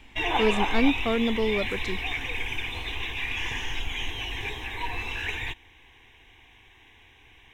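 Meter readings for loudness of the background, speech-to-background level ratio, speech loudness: -30.0 LUFS, 3.0 dB, -27.0 LUFS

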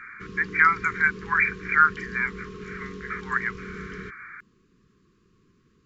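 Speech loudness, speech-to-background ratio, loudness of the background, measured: -23.0 LUFS, 16.5 dB, -39.5 LUFS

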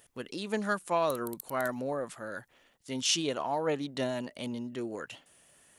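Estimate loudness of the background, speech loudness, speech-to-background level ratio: -47.0 LUFS, -33.0 LUFS, 14.0 dB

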